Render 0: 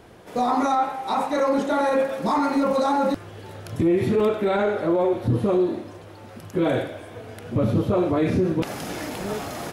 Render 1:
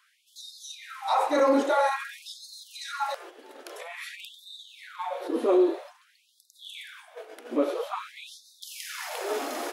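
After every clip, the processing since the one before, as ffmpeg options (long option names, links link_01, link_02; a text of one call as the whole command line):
ffmpeg -i in.wav -af "agate=range=-8dB:threshold=-37dB:ratio=16:detection=peak,afftfilt=real='re*gte(b*sr/1024,230*pow(3600/230,0.5+0.5*sin(2*PI*0.5*pts/sr)))':imag='im*gte(b*sr/1024,230*pow(3600/230,0.5+0.5*sin(2*PI*0.5*pts/sr)))':win_size=1024:overlap=0.75" out.wav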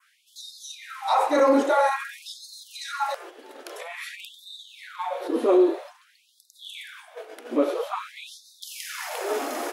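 ffmpeg -i in.wav -af "adynamicequalizer=threshold=0.00447:dfrequency=3900:dqfactor=1.4:tfrequency=3900:tqfactor=1.4:attack=5:release=100:ratio=0.375:range=2:mode=cutabove:tftype=bell,volume=3dB" out.wav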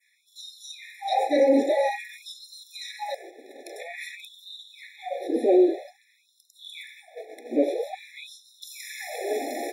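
ffmpeg -i in.wav -af "afftfilt=real='re*eq(mod(floor(b*sr/1024/850),2),0)':imag='im*eq(mod(floor(b*sr/1024/850),2),0)':win_size=1024:overlap=0.75" out.wav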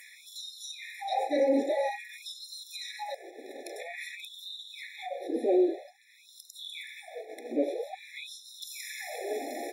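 ffmpeg -i in.wav -af "acompressor=mode=upward:threshold=-28dB:ratio=2.5,volume=-6dB" out.wav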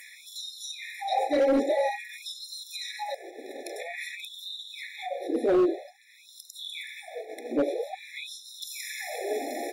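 ffmpeg -i in.wav -af "asoftclip=type=hard:threshold=-21.5dB,volume=3.5dB" out.wav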